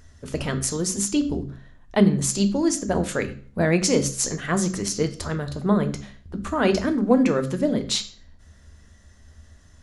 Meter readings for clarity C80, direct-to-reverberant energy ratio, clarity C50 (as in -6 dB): 18.0 dB, 8.0 dB, 13.5 dB